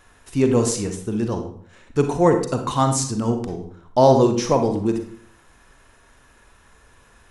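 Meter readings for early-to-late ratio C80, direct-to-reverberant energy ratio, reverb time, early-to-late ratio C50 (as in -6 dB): 11.0 dB, 5.5 dB, 0.55 s, 7.0 dB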